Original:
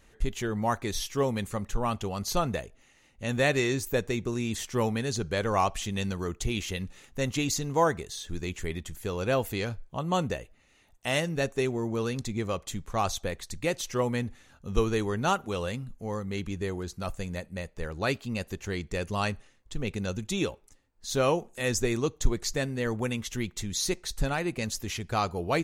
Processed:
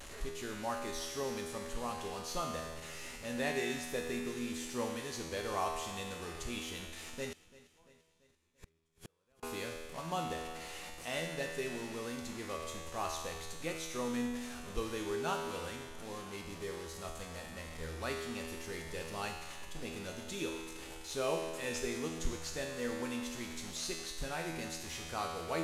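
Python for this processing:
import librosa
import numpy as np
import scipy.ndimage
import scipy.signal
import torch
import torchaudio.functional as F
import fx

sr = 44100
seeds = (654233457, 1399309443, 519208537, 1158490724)

y = fx.delta_mod(x, sr, bps=64000, step_db=-32.0)
y = fx.peak_eq(y, sr, hz=120.0, db=-6.5, octaves=1.3)
y = fx.comb_fb(y, sr, f0_hz=81.0, decay_s=1.5, harmonics='all', damping=0.0, mix_pct=90)
y = fx.gate_flip(y, sr, shuts_db=-40.0, range_db=-37, at=(7.32, 9.43))
y = fx.echo_feedback(y, sr, ms=340, feedback_pct=55, wet_db=-19.5)
y = y * librosa.db_to_amplitude(5.5)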